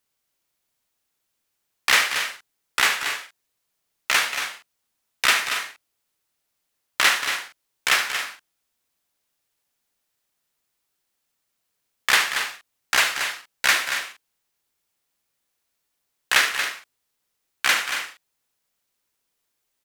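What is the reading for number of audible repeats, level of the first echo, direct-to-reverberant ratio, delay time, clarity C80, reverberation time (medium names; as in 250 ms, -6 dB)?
3, -11.5 dB, no reverb, 72 ms, no reverb, no reverb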